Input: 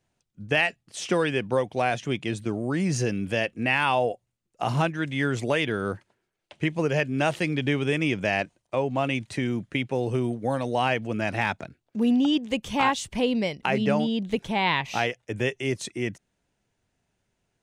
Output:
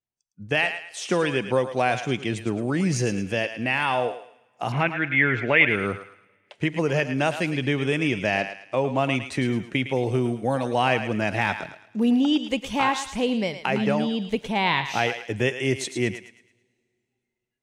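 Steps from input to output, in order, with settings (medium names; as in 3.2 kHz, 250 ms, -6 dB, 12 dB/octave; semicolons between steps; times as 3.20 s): spectral noise reduction 21 dB; gain riding 2 s; 4.72–5.69 s: resonant low-pass 2.2 kHz, resonance Q 5.1; thinning echo 109 ms, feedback 38%, high-pass 670 Hz, level -9 dB; on a send at -22 dB: reverberation, pre-delay 3 ms; on the sum: trim +1 dB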